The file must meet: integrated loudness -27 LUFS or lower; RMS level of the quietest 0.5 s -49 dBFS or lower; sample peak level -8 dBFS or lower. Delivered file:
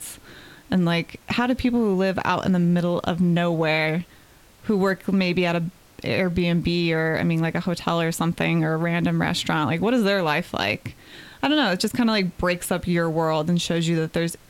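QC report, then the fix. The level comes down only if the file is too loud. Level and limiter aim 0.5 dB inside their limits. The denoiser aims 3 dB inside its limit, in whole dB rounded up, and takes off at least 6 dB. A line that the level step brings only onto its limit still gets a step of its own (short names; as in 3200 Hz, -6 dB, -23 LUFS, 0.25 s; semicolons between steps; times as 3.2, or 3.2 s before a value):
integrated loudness -22.5 LUFS: fail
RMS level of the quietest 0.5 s -51 dBFS: OK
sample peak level -7.0 dBFS: fail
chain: gain -5 dB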